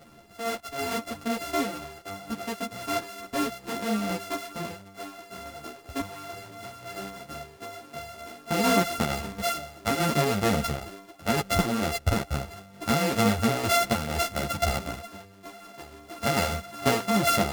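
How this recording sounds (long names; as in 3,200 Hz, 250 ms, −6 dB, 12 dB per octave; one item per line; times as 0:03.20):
a buzz of ramps at a fixed pitch in blocks of 64 samples
tremolo saw down 2.2 Hz, depth 40%
a shimmering, thickened sound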